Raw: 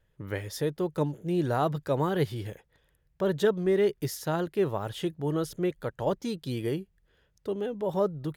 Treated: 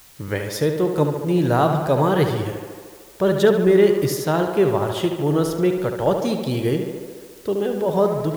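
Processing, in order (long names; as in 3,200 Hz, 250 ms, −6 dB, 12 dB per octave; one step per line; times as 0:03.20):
tape delay 73 ms, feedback 80%, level −6 dB, low-pass 3,500 Hz
in parallel at −5 dB: bit-depth reduction 8 bits, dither triangular
on the sum: level +4.5 dB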